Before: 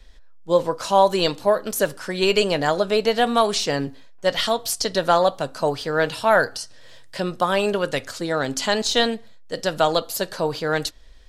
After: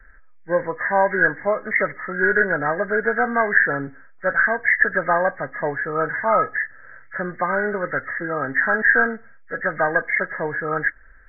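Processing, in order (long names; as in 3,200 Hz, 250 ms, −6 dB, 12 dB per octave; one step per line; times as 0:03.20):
hearing-aid frequency compression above 1,200 Hz 4 to 1
parametric band 1,700 Hz +7.5 dB 0.5 octaves
level −3 dB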